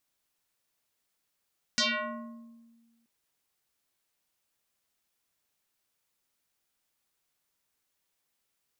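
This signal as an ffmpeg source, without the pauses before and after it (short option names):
-f lavfi -i "aevalsrc='0.0794*pow(10,-3*t/1.58)*sin(2*PI*231*t+7.5*pow(10,-3*t/1.26)*sin(2*PI*3.66*231*t))':d=1.28:s=44100"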